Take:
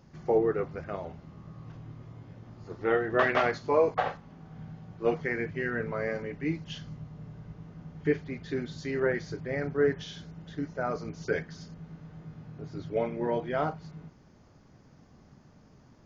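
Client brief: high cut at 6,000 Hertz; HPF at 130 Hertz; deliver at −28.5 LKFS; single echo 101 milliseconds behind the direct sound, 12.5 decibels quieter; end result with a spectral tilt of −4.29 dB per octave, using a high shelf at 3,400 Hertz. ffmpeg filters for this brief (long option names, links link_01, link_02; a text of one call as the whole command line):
ffmpeg -i in.wav -af "highpass=130,lowpass=6000,highshelf=frequency=3400:gain=4,aecho=1:1:101:0.237,volume=2dB" out.wav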